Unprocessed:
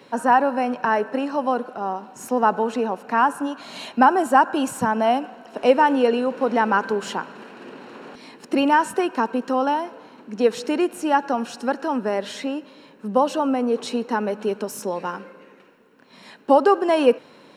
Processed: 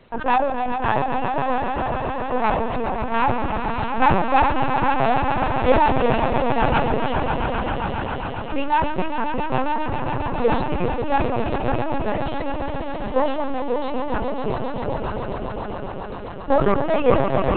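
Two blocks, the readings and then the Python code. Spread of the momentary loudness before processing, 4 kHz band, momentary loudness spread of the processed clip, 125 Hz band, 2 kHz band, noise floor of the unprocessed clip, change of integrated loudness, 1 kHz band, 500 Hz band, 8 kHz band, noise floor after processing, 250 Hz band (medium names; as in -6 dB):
16 LU, -0.5 dB, 9 LU, +15.5 dB, 0.0 dB, -50 dBFS, -1.0 dB, +0.5 dB, -0.5 dB, under -40 dB, -29 dBFS, -2.0 dB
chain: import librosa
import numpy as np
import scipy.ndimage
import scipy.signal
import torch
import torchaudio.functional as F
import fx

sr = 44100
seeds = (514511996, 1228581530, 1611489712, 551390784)

y = fx.tracing_dist(x, sr, depth_ms=0.15)
y = fx.dereverb_blind(y, sr, rt60_s=1.1)
y = fx.highpass(y, sr, hz=47.0, slope=6)
y = fx.echo_swell(y, sr, ms=135, loudest=5, wet_db=-8)
y = fx.lpc_vocoder(y, sr, seeds[0], excitation='pitch_kept', order=10)
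y = fx.sustainer(y, sr, db_per_s=46.0)
y = F.gain(torch.from_numpy(y), -2.5).numpy()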